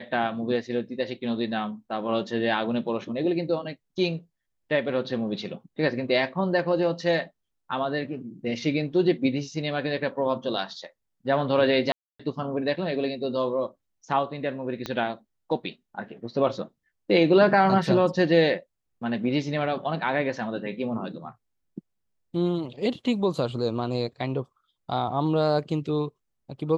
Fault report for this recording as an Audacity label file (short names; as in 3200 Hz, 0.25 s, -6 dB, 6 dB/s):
11.920000	12.200000	gap 0.275 s
14.860000	14.860000	pop -16 dBFS